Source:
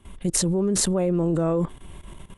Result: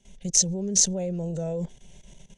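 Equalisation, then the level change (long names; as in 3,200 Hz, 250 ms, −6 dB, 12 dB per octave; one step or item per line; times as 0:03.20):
low-pass with resonance 6,200 Hz, resonance Q 8.4
phaser with its sweep stopped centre 310 Hz, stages 6
−5.5 dB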